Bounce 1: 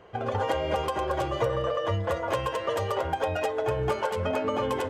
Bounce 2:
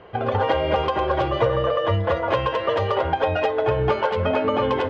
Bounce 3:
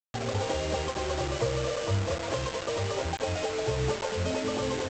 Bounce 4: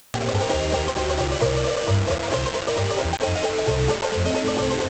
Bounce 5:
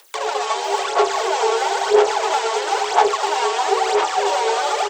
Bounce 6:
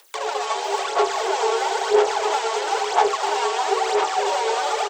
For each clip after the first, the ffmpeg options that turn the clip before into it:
-af "lowpass=f=4.3k:w=0.5412,lowpass=f=4.3k:w=1.3066,volume=6.5dB"
-af "equalizer=f=1.4k:t=o:w=2.5:g=-10.5,aresample=16000,acrusher=bits=4:mix=0:aa=0.000001,aresample=44100,volume=-5dB"
-af "acompressor=mode=upward:threshold=-32dB:ratio=2.5,volume=7.5dB"
-filter_complex "[0:a]afreqshift=320,asplit=2[a][b];[b]aecho=0:1:640|1120|1480|1750|1952:0.631|0.398|0.251|0.158|0.1[c];[a][c]amix=inputs=2:normalize=0,aphaser=in_gain=1:out_gain=1:delay=4.5:decay=0.62:speed=1:type=sinusoidal,volume=-1dB"
-af "aecho=1:1:298:0.251,volume=-3dB"

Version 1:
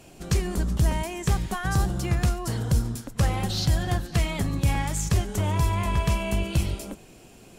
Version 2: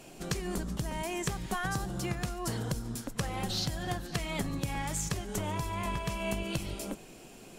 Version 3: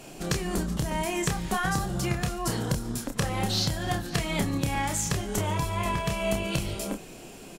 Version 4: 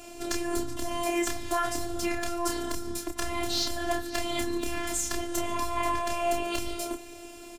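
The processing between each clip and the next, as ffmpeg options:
-af "acompressor=threshold=-27dB:ratio=6,equalizer=f=73:t=o:w=1.1:g=-12"
-filter_complex "[0:a]asplit=2[a][b];[b]adelay=29,volume=-5.5dB[c];[a][c]amix=inputs=2:normalize=0,volume=5dB"
-af "asoftclip=type=hard:threshold=-19.5dB,afftfilt=real='hypot(re,im)*cos(PI*b)':imag='0':win_size=512:overlap=0.75,volume=3dB"

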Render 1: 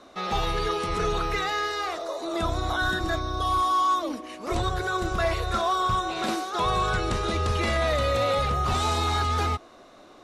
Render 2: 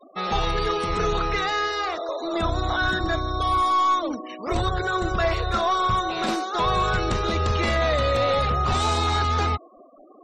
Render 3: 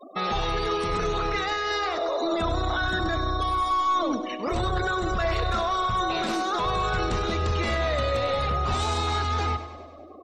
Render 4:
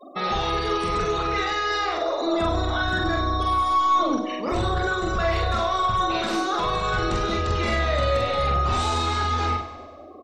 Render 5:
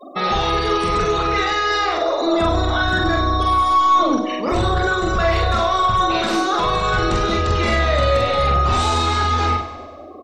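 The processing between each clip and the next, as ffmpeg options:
-filter_complex "[0:a]asplit=2[a][b];[b]aeval=exprs='clip(val(0),-1,0.0335)':c=same,volume=-6.5dB[c];[a][c]amix=inputs=2:normalize=0,afftfilt=real='re*gte(hypot(re,im),0.0141)':imag='im*gte(hypot(re,im),0.0141)':win_size=1024:overlap=0.75"
-filter_complex "[0:a]alimiter=limit=-23.5dB:level=0:latency=1:release=35,asplit=2[a][b];[b]aecho=0:1:99|198|297|396|495|594|693:0.237|0.14|0.0825|0.0487|0.0287|0.017|0.01[c];[a][c]amix=inputs=2:normalize=0,volume=4.5dB"
-filter_complex "[0:a]asplit=2[a][b];[b]adelay=45,volume=-2.5dB[c];[a][c]amix=inputs=2:normalize=0"
-af "acontrast=44"

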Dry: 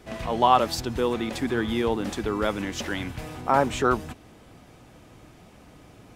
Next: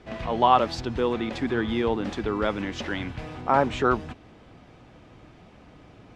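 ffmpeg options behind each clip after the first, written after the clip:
-af "lowpass=4.2k"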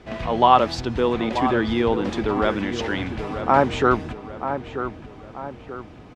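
-filter_complex "[0:a]asplit=2[a][b];[b]adelay=935,lowpass=f=2.1k:p=1,volume=-9dB,asplit=2[c][d];[d]adelay=935,lowpass=f=2.1k:p=1,volume=0.46,asplit=2[e][f];[f]adelay=935,lowpass=f=2.1k:p=1,volume=0.46,asplit=2[g][h];[h]adelay=935,lowpass=f=2.1k:p=1,volume=0.46,asplit=2[i][j];[j]adelay=935,lowpass=f=2.1k:p=1,volume=0.46[k];[a][c][e][g][i][k]amix=inputs=6:normalize=0,volume=4dB"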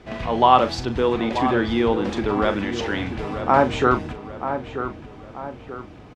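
-filter_complex "[0:a]asplit=2[a][b];[b]adelay=39,volume=-10.5dB[c];[a][c]amix=inputs=2:normalize=0"

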